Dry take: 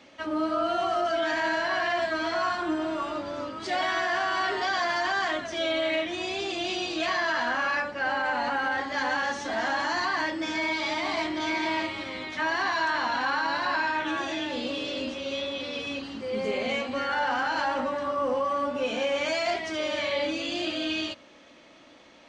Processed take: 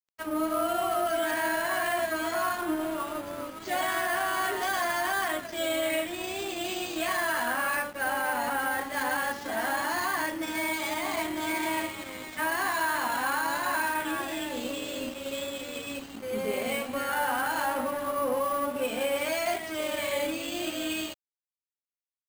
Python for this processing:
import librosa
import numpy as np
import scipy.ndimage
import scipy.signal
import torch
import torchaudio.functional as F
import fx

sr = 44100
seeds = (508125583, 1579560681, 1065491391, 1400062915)

y = fx.high_shelf(x, sr, hz=7600.0, db=-11.0)
y = np.repeat(y[::4], 4)[:len(y)]
y = np.sign(y) * np.maximum(np.abs(y) - 10.0 ** (-43.0 / 20.0), 0.0)